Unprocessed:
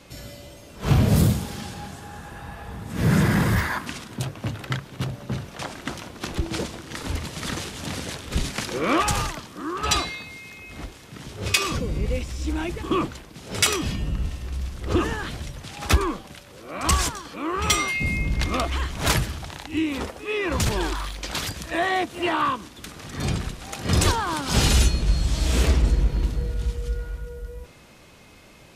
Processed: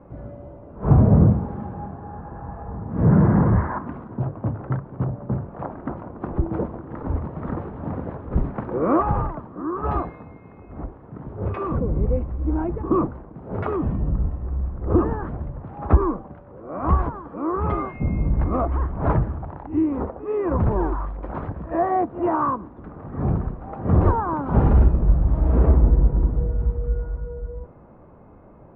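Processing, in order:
low-pass filter 1,100 Hz 24 dB per octave
level +4 dB

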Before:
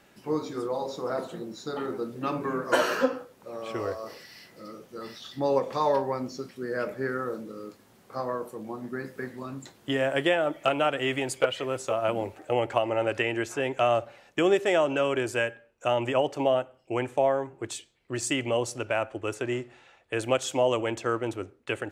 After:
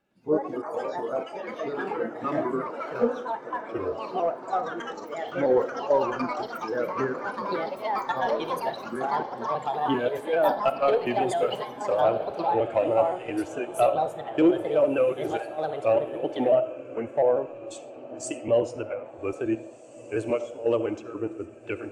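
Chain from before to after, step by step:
pitch shifter gated in a rhythm −1.5 semitones, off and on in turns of 140 ms
notch filter 1,900 Hz, Q 12
in parallel at −6.5 dB: soft clipping −21.5 dBFS, distortion −13 dB
on the sum: gate pattern "xxx.x.xxxx.." 122 BPM −12 dB
comb and all-pass reverb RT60 0.7 s, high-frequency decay 0.9×, pre-delay 25 ms, DRR 10 dB
gain into a clipping stage and back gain 16 dB
on a send: feedback delay with all-pass diffusion 1,826 ms, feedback 52%, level −9.5 dB
on the sum: delay with pitch and tempo change per echo 107 ms, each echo +5 semitones, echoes 3
every bin expanded away from the loudest bin 1.5 to 1

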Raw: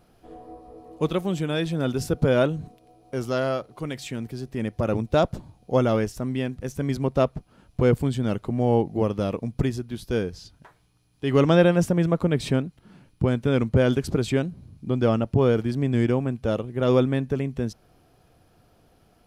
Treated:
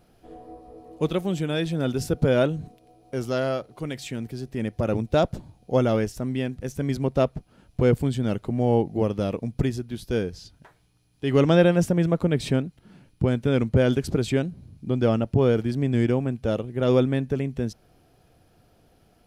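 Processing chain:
parametric band 1,100 Hz −4 dB 0.57 octaves

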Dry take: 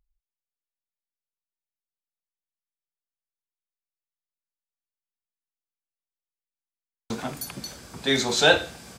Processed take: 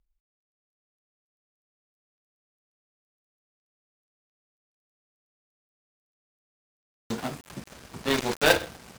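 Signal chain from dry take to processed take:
gap after every zero crossing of 0.21 ms

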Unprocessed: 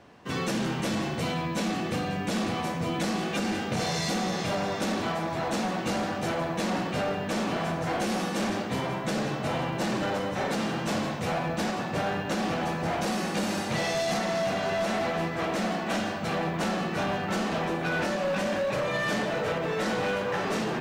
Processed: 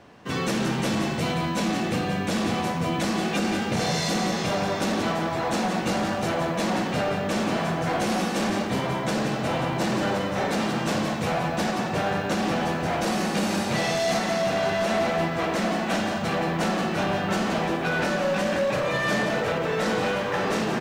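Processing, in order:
single-tap delay 175 ms −8 dB
level +3 dB

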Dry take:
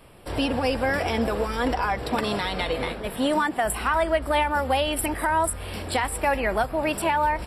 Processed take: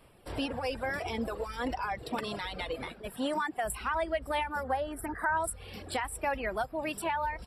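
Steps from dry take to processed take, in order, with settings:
reverb reduction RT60 1.3 s
0:04.63–0:05.37: high shelf with overshoot 2,100 Hz −8.5 dB, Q 3
level −8 dB

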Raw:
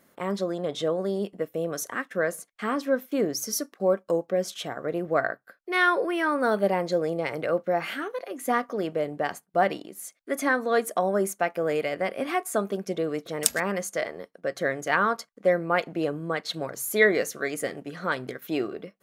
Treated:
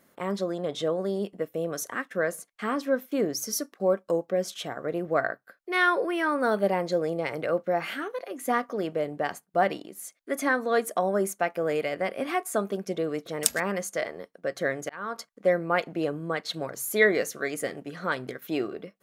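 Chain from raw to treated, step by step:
0:14.68–0:15.16: volume swells 477 ms
level −1 dB

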